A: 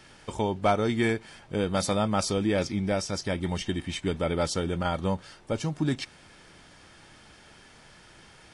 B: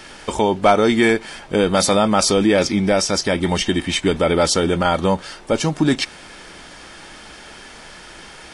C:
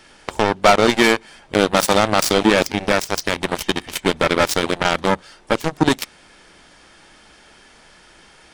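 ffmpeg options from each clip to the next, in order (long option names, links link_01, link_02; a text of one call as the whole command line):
ffmpeg -i in.wav -filter_complex "[0:a]equalizer=frequency=110:width_type=o:width=1.1:gain=-11.5,asplit=2[link_01][link_02];[link_02]alimiter=limit=-22.5dB:level=0:latency=1:release=31,volume=2dB[link_03];[link_01][link_03]amix=inputs=2:normalize=0,volume=7dB" out.wav
ffmpeg -i in.wav -af "aeval=exprs='0.75*(cos(1*acos(clip(val(0)/0.75,-1,1)))-cos(1*PI/2))+0.0841*(cos(3*acos(clip(val(0)/0.75,-1,1)))-cos(3*PI/2))+0.0944*(cos(7*acos(clip(val(0)/0.75,-1,1)))-cos(7*PI/2))':channel_layout=same,apsyclip=7.5dB,volume=-3dB" out.wav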